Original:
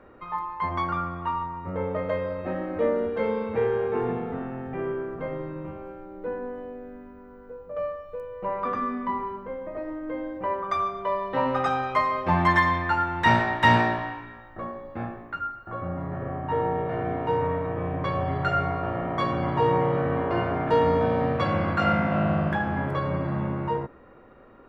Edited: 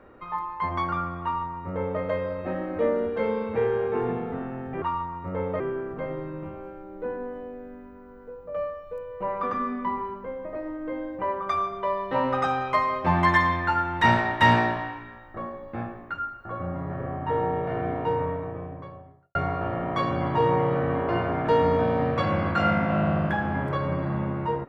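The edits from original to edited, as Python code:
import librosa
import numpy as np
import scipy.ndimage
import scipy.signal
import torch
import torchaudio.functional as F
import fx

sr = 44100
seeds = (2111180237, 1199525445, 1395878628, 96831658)

y = fx.studio_fade_out(x, sr, start_s=17.07, length_s=1.5)
y = fx.edit(y, sr, fx.duplicate(start_s=1.23, length_s=0.78, to_s=4.82), tone=tone)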